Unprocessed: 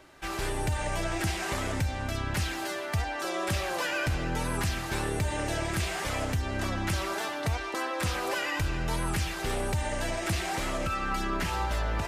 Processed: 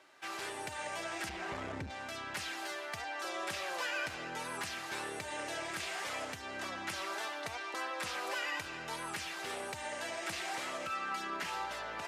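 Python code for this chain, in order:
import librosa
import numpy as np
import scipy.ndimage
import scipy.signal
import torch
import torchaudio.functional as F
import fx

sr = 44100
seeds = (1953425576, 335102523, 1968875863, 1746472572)

y = fx.riaa(x, sr, side='playback', at=(1.28, 1.89), fade=0.02)
y = 10.0 ** (-13.0 / 20.0) * np.tanh(y / 10.0 ** (-13.0 / 20.0))
y = fx.weighting(y, sr, curve='A')
y = y * librosa.db_to_amplitude(-6.0)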